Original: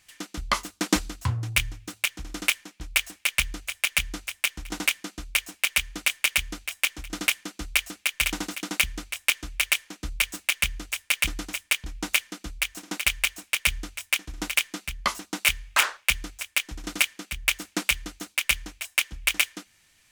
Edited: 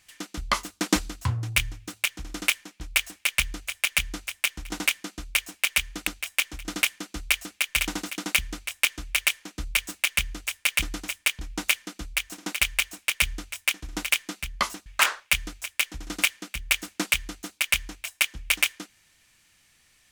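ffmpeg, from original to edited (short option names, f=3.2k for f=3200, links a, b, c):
-filter_complex "[0:a]asplit=3[a][b][c];[a]atrim=end=6.072[d];[b]atrim=start=6.518:end=15.312[e];[c]atrim=start=15.628[f];[d][e]acrossfade=d=0.004:c1=hsin:c2=hsin[g];[g][f]acrossfade=d=0.004:c1=hsin:c2=hsin"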